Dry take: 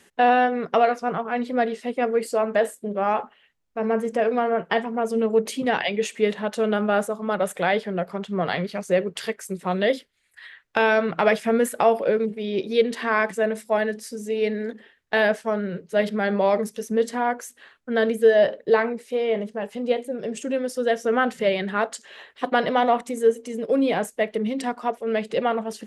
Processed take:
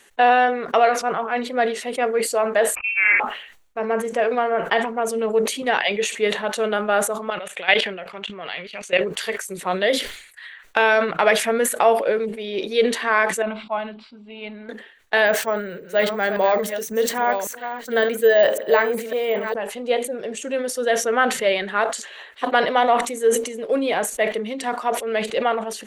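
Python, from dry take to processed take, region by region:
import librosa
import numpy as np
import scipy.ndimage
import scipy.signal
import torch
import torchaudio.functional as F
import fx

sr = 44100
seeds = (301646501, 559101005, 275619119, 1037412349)

y = fx.chain(x, sr, fx.doubler(ms=50.0, db=-5),
    fx.freq_invert(carrier_hz=2900), at=(2.75, 3.2))
y = fx.chain(y, sr, fx.lowpass(hz=9300.0, slope=12),
    fx.peak_eq(hz=2700.0, db=13.5, octaves=0.86),
    fx.level_steps(step_db=17), at=(7.3, 9.01))
y = fx.chain(y, sr, fx.gaussian_blur(sigma=2.5),
    fx.fixed_phaser(hz=1800.0, stages=6), at=(13.42, 14.69))
y = fx.chain(y, sr, fx.reverse_delay(ms=553, wet_db=-9.0),
    fx.resample_bad(factor=2, down='filtered', up='hold'), at=(15.26, 19.54))
y = fx.peak_eq(y, sr, hz=130.0, db=-14.5, octaves=2.5)
y = fx.notch(y, sr, hz=5100.0, q=8.6)
y = fx.sustainer(y, sr, db_per_s=87.0)
y = y * 10.0 ** (4.5 / 20.0)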